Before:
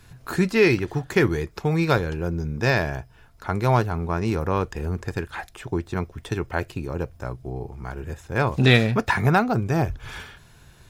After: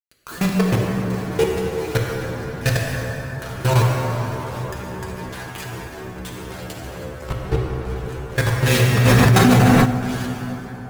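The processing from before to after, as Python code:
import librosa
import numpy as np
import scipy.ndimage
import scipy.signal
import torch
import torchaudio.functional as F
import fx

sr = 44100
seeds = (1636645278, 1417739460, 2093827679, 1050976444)

y = fx.tilt_eq(x, sr, slope=-3.0, at=(0.49, 1.14))
y = fx.fuzz(y, sr, gain_db=39.0, gate_db=-36.0)
y = fx.stiff_resonator(y, sr, f0_hz=61.0, decay_s=0.27, stiffness=0.002)
y = fx.level_steps(y, sr, step_db=20)
y = fx.high_shelf(y, sr, hz=7600.0, db=4.5)
y = fx.rev_plate(y, sr, seeds[0], rt60_s=4.6, hf_ratio=0.45, predelay_ms=0, drr_db=-2.5)
y = fx.env_flatten(y, sr, amount_pct=100, at=(9.04, 9.84), fade=0.02)
y = y * 10.0 ** (3.5 / 20.0)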